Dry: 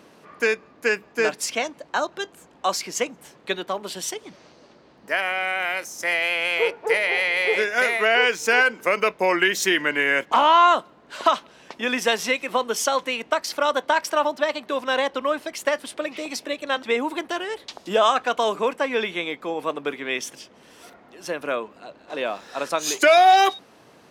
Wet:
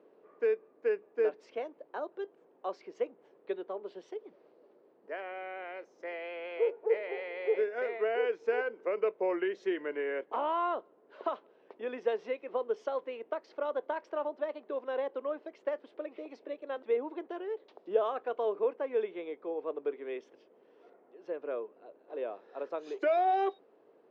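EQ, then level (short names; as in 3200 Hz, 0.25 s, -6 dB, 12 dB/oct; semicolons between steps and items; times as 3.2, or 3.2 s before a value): band-pass 420 Hz, Q 3.1; air absorption 220 m; tilt +3 dB/oct; 0.0 dB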